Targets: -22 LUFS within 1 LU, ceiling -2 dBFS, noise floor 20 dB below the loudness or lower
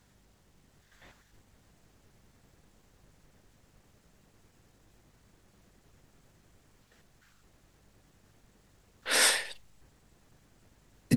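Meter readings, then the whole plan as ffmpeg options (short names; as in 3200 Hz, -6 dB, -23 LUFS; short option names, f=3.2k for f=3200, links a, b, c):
hum 50 Hz; harmonics up to 200 Hz; hum level -68 dBFS; loudness -26.5 LUFS; peak -10.5 dBFS; loudness target -22.0 LUFS
-> -af "bandreject=f=50:t=h:w=4,bandreject=f=100:t=h:w=4,bandreject=f=150:t=h:w=4,bandreject=f=200:t=h:w=4"
-af "volume=4.5dB"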